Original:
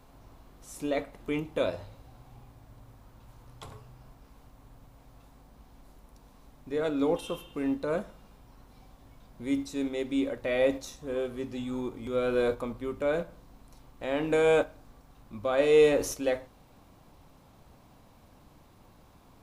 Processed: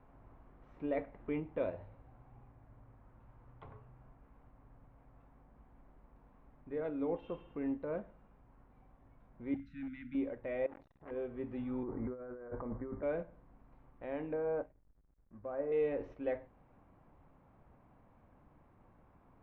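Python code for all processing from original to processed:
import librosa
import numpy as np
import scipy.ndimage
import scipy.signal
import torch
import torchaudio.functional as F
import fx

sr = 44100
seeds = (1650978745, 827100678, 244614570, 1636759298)

y = fx.chain(x, sr, fx.cheby1_bandstop(low_hz=260.0, high_hz=1400.0, order=5),
    fx.clip_hard(threshold_db=-32.5), at=(9.54, 10.15))
y = fx.chain(y, sr, fx.over_compress(threshold_db=-34.0, ratio=-1.0),
    fx.transformer_sat(knee_hz=1500.0), at=(10.66, 11.11))
y = fx.chain(y, sr, fx.steep_lowpass(hz=2000.0, slope=72),
    fx.over_compress(threshold_db=-38.0, ratio=-1.0), at=(11.83, 13.03))
y = fx.chain(y, sr, fx.lowpass(hz=1600.0, slope=24),
    fx.backlash(play_db=-45.5), at=(14.33, 15.72))
y = scipy.signal.sosfilt(scipy.signal.butter(4, 2100.0, 'lowpass', fs=sr, output='sos'), y)
y = fx.dynamic_eq(y, sr, hz=1300.0, q=2.4, threshold_db=-52.0, ratio=4.0, max_db=-6)
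y = fx.rider(y, sr, range_db=4, speed_s=0.5)
y = y * 10.0 ** (-8.5 / 20.0)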